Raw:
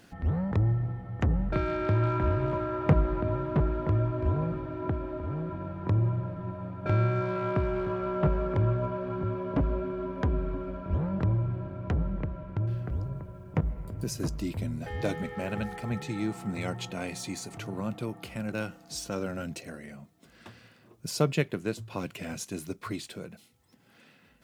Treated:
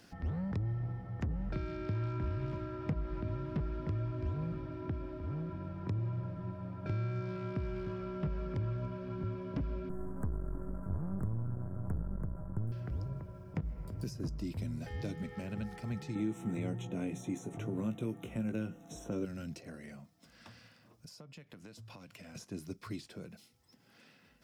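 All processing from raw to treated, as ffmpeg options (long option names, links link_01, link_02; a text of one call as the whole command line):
ffmpeg -i in.wav -filter_complex "[0:a]asettb=1/sr,asplit=3[link_01][link_02][link_03];[link_01]atrim=end=9.894[link_04];[link_02]atrim=start=9.89:end=12.72,asetpts=PTS-STARTPTS,afade=type=in:duration=0.004:curve=qsin,afade=type=out:start_time=2.826:duration=0.004:curve=qsin,aeval=exprs='if(lt(val(0),0),0.251*val(0),val(0))':channel_layout=same,asuperstop=centerf=3700:order=8:qfactor=0.55,bass=frequency=250:gain=8,treble=frequency=4000:gain=10[link_05];[link_03]atrim=start=12.716[link_06];[link_04][link_05]acrossfade=duration=0.004:curve1=hsin:curve2=qsin[link_07];[link_07][link_06]acrossfade=duration=0.004:curve1=qsin:curve2=hsin,asettb=1/sr,asplit=3[link_08][link_09][link_10];[link_08]atrim=end=16.154[link_11];[link_09]atrim=start=16.15:end=19.25,asetpts=PTS-STARTPTS,afade=type=in:duration=0.004:curve=qsin,afade=type=out:start_time=3.096:duration=0.004:curve=qsin,asuperstop=centerf=4700:order=8:qfactor=2.6,equalizer=frequency=420:width_type=o:width=2.6:gain=10,asplit=2[link_12][link_13];[link_13]adelay=18,volume=-8dB[link_14];[link_12][link_14]amix=inputs=2:normalize=0,atrim=end_sample=136710[link_15];[link_10]atrim=start=19.246[link_16];[link_11][link_15]acrossfade=duration=0.004:curve1=hsin:curve2=qsin[link_17];[link_17][link_16]acrossfade=duration=0.004:curve1=qsin:curve2=hsin,asettb=1/sr,asplit=3[link_18][link_19][link_20];[link_18]atrim=end=19.994[link_21];[link_19]atrim=start=19.99:end=22.35,asetpts=PTS-STARTPTS,afade=type=in:duration=0.004:curve=qsin,afade=type=out:start_time=2.356:duration=0.004:curve=qsin,equalizer=frequency=380:width_type=o:width=0.28:gain=-12,acompressor=threshold=-43dB:ratio=16:attack=3.2:release=140:knee=1:detection=peak[link_22];[link_20]atrim=start=22.346[link_23];[link_21][link_22]acrossfade=duration=0.004:curve1=hsin:curve2=qsin[link_24];[link_24][link_23]acrossfade=duration=0.004:curve1=qsin:curve2=hsin,equalizer=frequency=5200:width_type=o:width=0.33:gain=8.5,acrossover=split=330|1800[link_25][link_26][link_27];[link_25]acompressor=threshold=-29dB:ratio=4[link_28];[link_26]acompressor=threshold=-47dB:ratio=4[link_29];[link_27]acompressor=threshold=-50dB:ratio=4[link_30];[link_28][link_29][link_30]amix=inputs=3:normalize=0,volume=-4dB" out.wav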